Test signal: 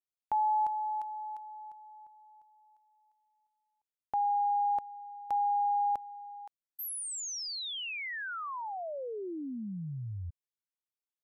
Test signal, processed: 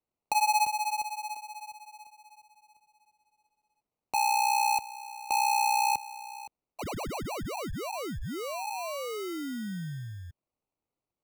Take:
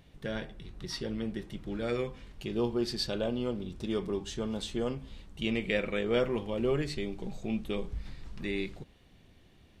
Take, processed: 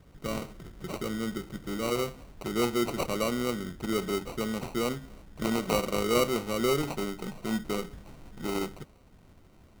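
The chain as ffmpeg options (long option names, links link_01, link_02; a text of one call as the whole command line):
ffmpeg -i in.wav -filter_complex "[0:a]acrossover=split=130|4700[link_01][link_02][link_03];[link_01]acompressor=threshold=-49dB:ratio=6:release=295[link_04];[link_04][link_02][link_03]amix=inputs=3:normalize=0,acrusher=samples=26:mix=1:aa=0.000001,volume=3dB" out.wav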